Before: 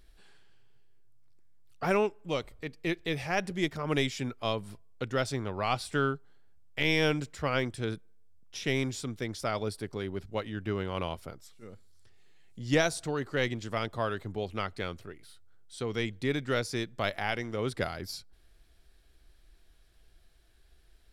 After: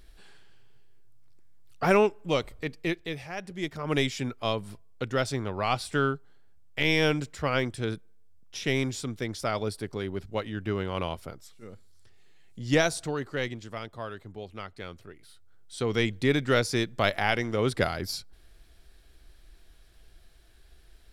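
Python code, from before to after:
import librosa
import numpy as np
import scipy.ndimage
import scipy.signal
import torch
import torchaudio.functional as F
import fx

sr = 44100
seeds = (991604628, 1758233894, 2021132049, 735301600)

y = fx.gain(x, sr, db=fx.line((2.73, 5.5), (3.34, -7.5), (3.97, 2.5), (12.99, 2.5), (13.86, -6.0), (14.72, -6.0), (15.9, 6.0)))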